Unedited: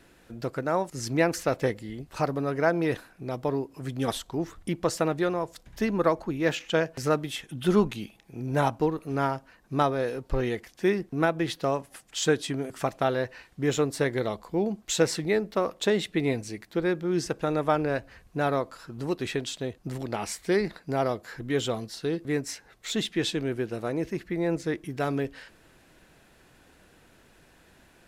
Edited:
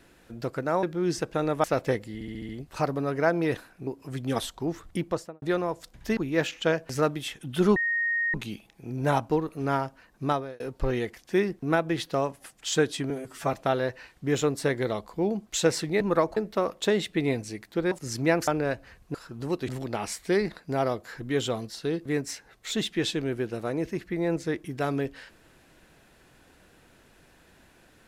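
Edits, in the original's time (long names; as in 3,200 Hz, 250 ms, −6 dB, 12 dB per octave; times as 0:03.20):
0:00.83–0:01.39: swap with 0:16.91–0:17.72
0:01.89: stutter 0.07 s, 6 plays
0:03.27–0:03.59: remove
0:04.72–0:05.14: fade out and dull
0:05.89–0:06.25: move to 0:15.36
0:07.84: insert tone 1,860 Hz −23.5 dBFS 0.58 s
0:09.73–0:10.10: fade out
0:12.60–0:12.89: time-stretch 1.5×
0:18.39–0:18.73: remove
0:19.27–0:19.88: remove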